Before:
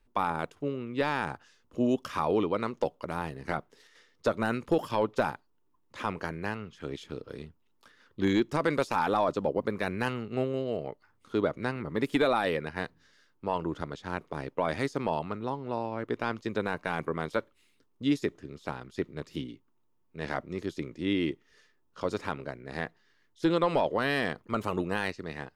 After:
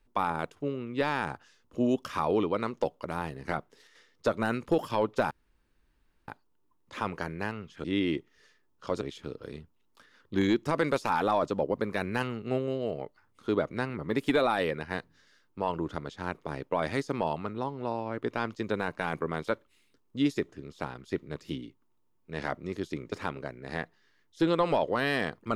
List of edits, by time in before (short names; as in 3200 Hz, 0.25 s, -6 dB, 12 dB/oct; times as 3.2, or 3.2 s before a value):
5.31 insert room tone 0.97 s
20.98–22.15 move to 6.87